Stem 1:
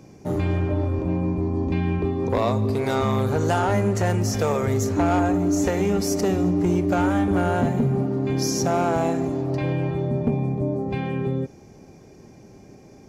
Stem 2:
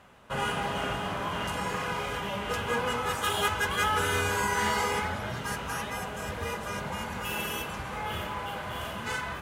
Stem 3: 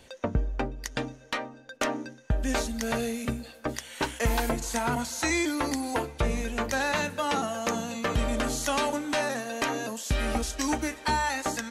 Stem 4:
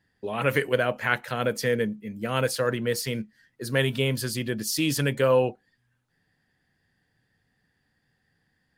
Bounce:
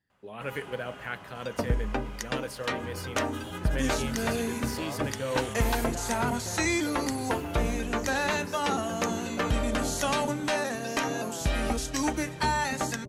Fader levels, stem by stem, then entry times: −17.0, −14.5, −0.5, −11.5 decibels; 2.45, 0.10, 1.35, 0.00 seconds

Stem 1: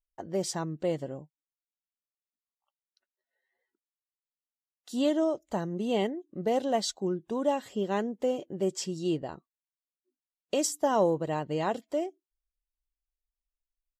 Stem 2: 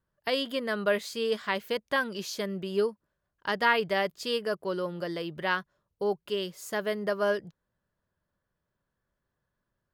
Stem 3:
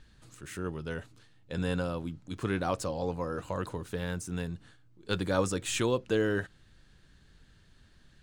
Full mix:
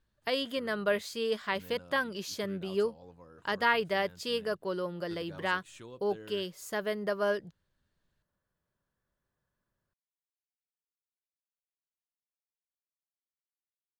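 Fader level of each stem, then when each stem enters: muted, −2.5 dB, −20.0 dB; muted, 0.00 s, 0.00 s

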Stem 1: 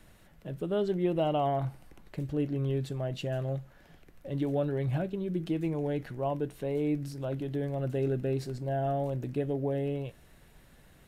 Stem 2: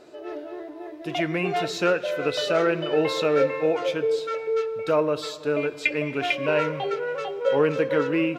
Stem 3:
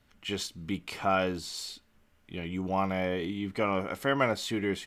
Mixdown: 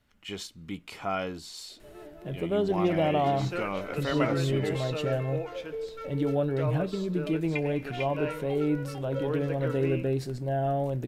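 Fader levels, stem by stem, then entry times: +2.5, −12.0, −4.0 decibels; 1.80, 1.70, 0.00 seconds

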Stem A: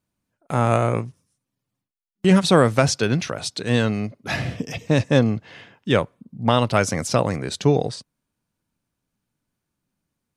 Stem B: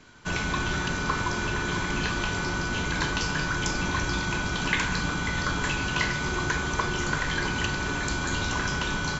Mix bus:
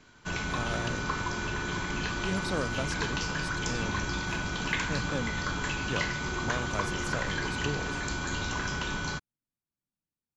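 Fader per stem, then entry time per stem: −17.5, −4.5 decibels; 0.00, 0.00 seconds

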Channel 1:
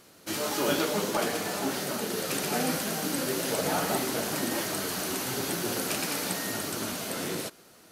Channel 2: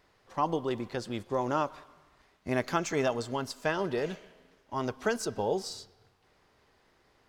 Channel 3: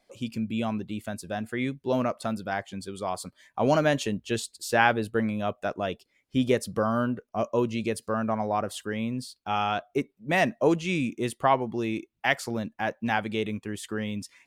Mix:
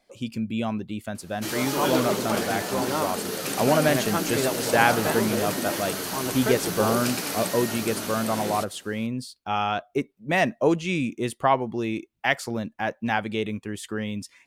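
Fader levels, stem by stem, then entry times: +1.0, +1.0, +1.5 decibels; 1.15, 1.40, 0.00 seconds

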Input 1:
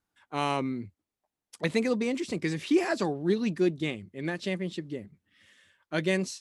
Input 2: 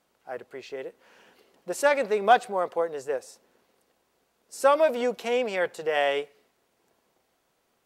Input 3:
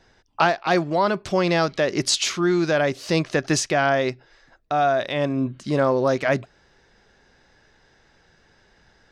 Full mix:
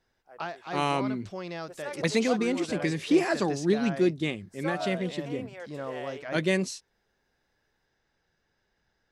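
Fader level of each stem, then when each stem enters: +1.5, −16.0, −17.0 decibels; 0.40, 0.00, 0.00 seconds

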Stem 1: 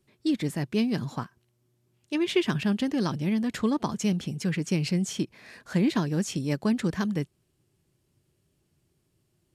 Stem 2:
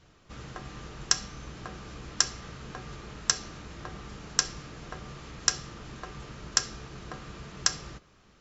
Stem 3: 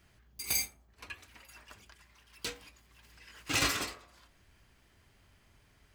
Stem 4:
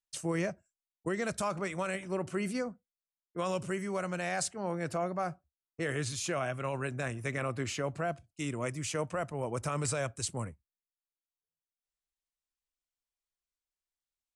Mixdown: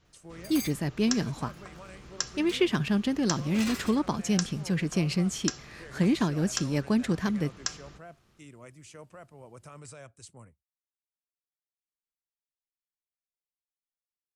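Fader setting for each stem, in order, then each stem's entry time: −0.5, −7.0, −7.0, −14.0 decibels; 0.25, 0.00, 0.05, 0.00 seconds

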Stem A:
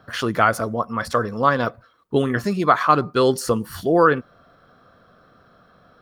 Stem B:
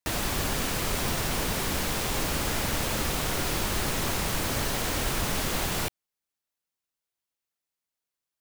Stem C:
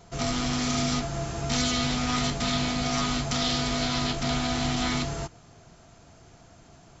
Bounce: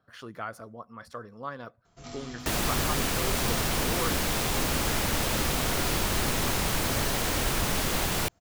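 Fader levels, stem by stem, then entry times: −19.5, +1.0, −14.5 decibels; 0.00, 2.40, 1.85 seconds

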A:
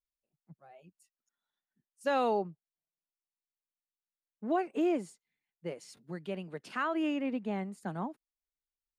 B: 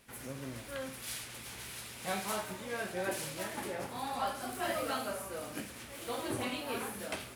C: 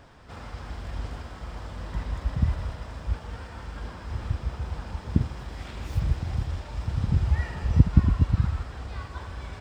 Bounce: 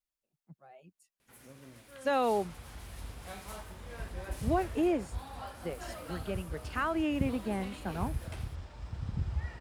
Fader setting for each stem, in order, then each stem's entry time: +0.5, −10.0, −11.0 decibels; 0.00, 1.20, 2.05 seconds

